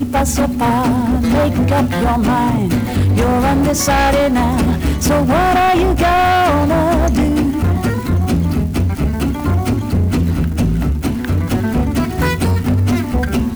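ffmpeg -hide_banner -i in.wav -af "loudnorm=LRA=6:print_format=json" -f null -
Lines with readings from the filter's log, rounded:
"input_i" : "-15.4",
"input_tp" : "-8.0",
"input_lra" : "3.3",
"input_thresh" : "-25.4",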